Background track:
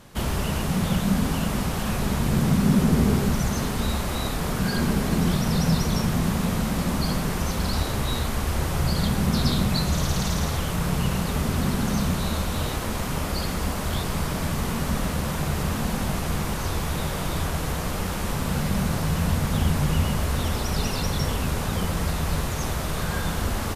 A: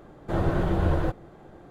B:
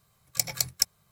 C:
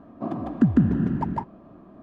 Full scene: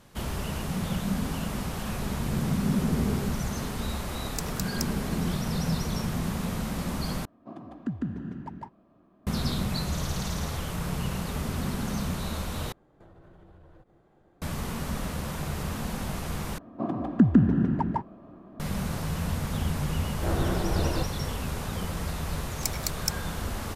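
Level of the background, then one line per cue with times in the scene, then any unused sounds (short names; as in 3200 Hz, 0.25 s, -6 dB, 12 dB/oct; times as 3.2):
background track -6.5 dB
3.99 add B -7 dB + ring modulator 310 Hz
7.25 replace with C -13.5 dB + high shelf 2200 Hz +8.5 dB
12.72 replace with A -14 dB + compressor 12:1, threshold -35 dBFS
16.58 replace with C -0.5 dB
19.93 add A -3.5 dB
22.26 add B -5 dB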